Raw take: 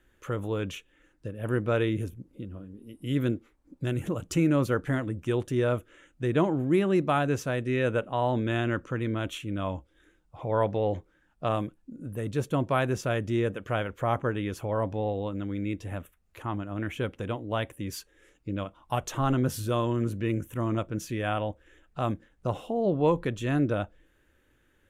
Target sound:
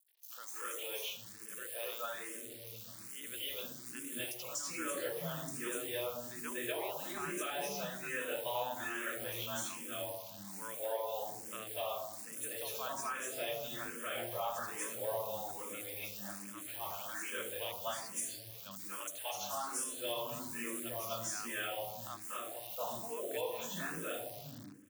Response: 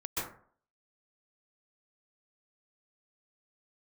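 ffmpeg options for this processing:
-filter_complex "[1:a]atrim=start_sample=2205,asetrate=22491,aresample=44100[a];[0:a][a]afir=irnorm=-1:irlink=0,acrusher=bits=8:dc=4:mix=0:aa=0.000001,aderivative,acrossover=split=290|5300[b][c][d];[c]adelay=80[e];[b]adelay=600[f];[f][e][d]amix=inputs=3:normalize=0,alimiter=level_in=5.5dB:limit=-24dB:level=0:latency=1:release=327,volume=-5.5dB,asettb=1/sr,asplit=3[g][h][i];[g]atrim=end=0.664[j];[h]atrim=start=0.66:end=3,asetpts=PTS-STARTPTS,afade=t=in:d=0.004:c=qsin,afade=t=out:st=2.336:d=0.004:c=qsin,lowshelf=f=370:g=-7.5[k];[i]atrim=start=2.996[l];[j][k]acrossfade=d=0.004:c1=hsin:c2=qsin[m];[m][l]acrossfade=d=0.004:c1=qsin:c2=hsin,asplit=2[n][o];[o]afreqshift=1.2[p];[n][p]amix=inputs=2:normalize=1,volume=4.5dB"

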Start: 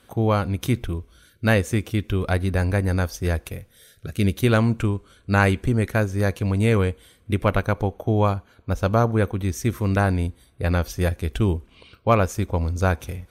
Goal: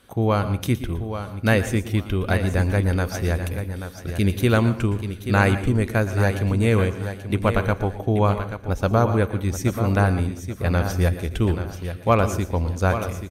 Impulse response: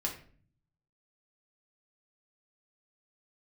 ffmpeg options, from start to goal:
-filter_complex "[0:a]aecho=1:1:833|1666|2499:0.335|0.0837|0.0209,asplit=2[a][b];[1:a]atrim=start_sample=2205,highshelf=f=12k:g=8,adelay=115[c];[b][c]afir=irnorm=-1:irlink=0,volume=-15dB[d];[a][d]amix=inputs=2:normalize=0"

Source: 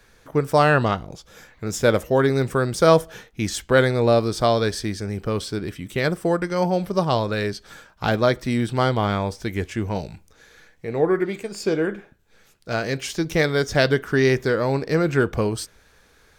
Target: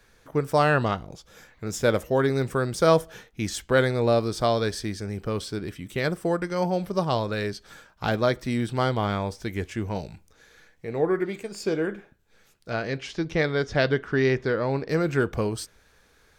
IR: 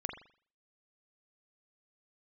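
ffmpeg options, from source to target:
-filter_complex "[0:a]asettb=1/sr,asplit=3[a][b][c];[a]atrim=end=12.704[d];[b]atrim=start=12.7:end=14.89,asetpts=PTS-STARTPTS,afade=t=in:d=0.004:c=qsin,afade=t=out:st=2.186:d=0.004:c=qsin,lowpass=4.2k[e];[c]atrim=start=14.886[f];[d][e]acrossfade=d=0.004:c1=hsin:c2=qsin[g];[g][f]acrossfade=d=0.004:c1=qsin:c2=hsin,volume=-4dB"

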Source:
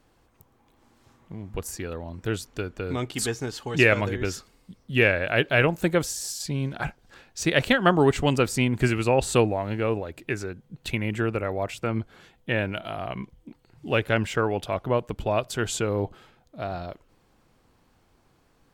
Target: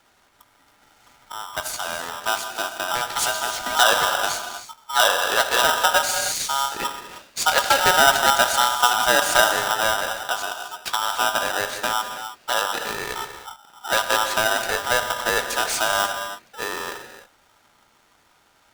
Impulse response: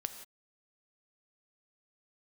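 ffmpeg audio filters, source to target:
-filter_complex "[0:a]highpass=91,equalizer=f=5.5k:w=6.4:g=7,acrossover=split=690|2200[a][b][c];[b]acompressor=threshold=-39dB:ratio=6[d];[a][d][c]amix=inputs=3:normalize=0[e];[1:a]atrim=start_sample=2205,asetrate=24696,aresample=44100[f];[e][f]afir=irnorm=-1:irlink=0,aeval=exprs='val(0)*sgn(sin(2*PI*1100*n/s))':c=same,volume=2.5dB"

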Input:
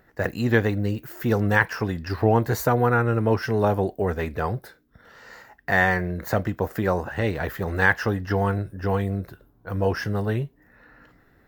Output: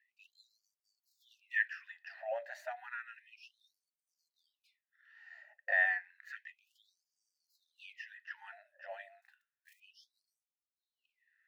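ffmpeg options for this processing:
-filter_complex "[0:a]asplit=3[a][b][c];[a]bandpass=f=530:t=q:w=8,volume=0dB[d];[b]bandpass=f=1.84k:t=q:w=8,volume=-6dB[e];[c]bandpass=f=2.48k:t=q:w=8,volume=-9dB[f];[d][e][f]amix=inputs=3:normalize=0,asettb=1/sr,asplit=3[g][h][i];[g]atrim=end=9.224[j];[h]atrim=start=9.22:end=9.8,asetpts=PTS-STARTPTS,afade=t=in:d=0.004:c=qsin,afade=t=out:st=0.576:d=0.004:c=qsin,acrusher=bits=7:mode=log:mix=0:aa=0.000001[k];[i]atrim=start=9.796[l];[j][k]acrossfade=d=0.004:c1=hsin:c2=qsin[m];[m][l]acrossfade=d=0.004:c1=qsin:c2=hsin,afftfilt=real='re*gte(b*sr/1024,550*pow(4600/550,0.5+0.5*sin(2*PI*0.31*pts/sr)))':imag='im*gte(b*sr/1024,550*pow(4600/550,0.5+0.5*sin(2*PI*0.31*pts/sr)))':win_size=1024:overlap=0.75"

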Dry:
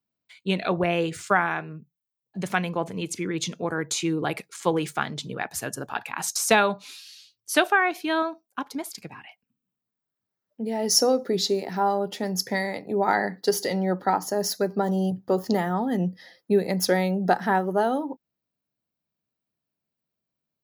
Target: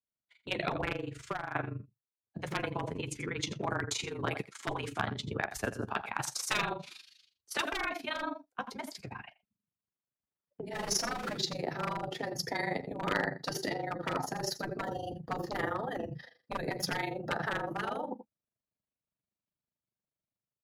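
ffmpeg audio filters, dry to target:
-filter_complex "[0:a]asettb=1/sr,asplit=3[a][b][c];[a]atrim=end=10.734[d];[b]atrim=start=10.73:end=11.35,asetpts=PTS-STARTPTS,afade=t=in:d=0.004:c=qsin,afade=t=out:st=0.616:d=0.004:c=qsin,aeval=exprs='val(0)+0.5*0.0398*sgn(val(0))':c=same[e];[c]atrim=start=11.346[f];[d][e]acrossfade=d=0.004:c1=hsin:c2=qsin[g];[g][f]acrossfade=d=0.004:c1=qsin:c2=hsin,dynaudnorm=f=150:g=5:m=5.5dB,tremolo=f=25:d=0.889,asplit=2[h][i];[i]adelay=13,volume=-13.5dB[j];[h][j]amix=inputs=2:normalize=0,aecho=1:1:85:0.178,agate=range=-8dB:threshold=-42dB:ratio=16:detection=peak,lowpass=f=2.3k:p=1,volume=13dB,asoftclip=hard,volume=-13dB,asettb=1/sr,asplit=3[k][l][m];[k]atrim=end=0.924[n];[l]atrim=start=0.92:end=1.55,asetpts=PTS-STARTPTS,afade=t=in:d=0.004:c=qsin,afade=t=out:st=0.626:d=0.004:c=qsin,acompressor=threshold=-33dB:ratio=5[o];[m]atrim=start=1.546[p];[n][o]acrossfade=d=0.004:c1=hsin:c2=qsin[q];[q][p]acrossfade=d=0.004:c1=qsin:c2=hsin,afftfilt=real='re*lt(hypot(re,im),0.251)':imag='im*lt(hypot(re,im),0.251)':win_size=1024:overlap=0.75,afreqshift=-27,volume=-1.5dB" -ar 44100 -c:a libmp3lame -b:a 80k

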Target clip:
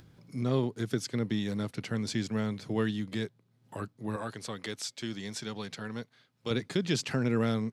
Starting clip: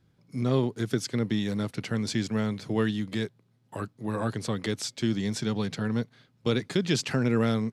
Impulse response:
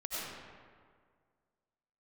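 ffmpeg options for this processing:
-filter_complex "[0:a]acompressor=mode=upward:threshold=-42dB:ratio=2.5,asettb=1/sr,asplit=3[a][b][c];[a]atrim=end=4.164[d];[b]atrim=start=4.16:end=6.51,asetpts=PTS-STARTPTS,afade=t=in:d=0.004:c=qsin,afade=t=out:st=2.346:d=0.004:c=qsin,lowshelf=f=410:g=-10[e];[c]atrim=start=6.506[f];[d][e]acrossfade=d=0.004:c1=hsin:c2=qsin[g];[g][f]acrossfade=d=0.004:c1=qsin:c2=hsin,volume=-3.5dB"

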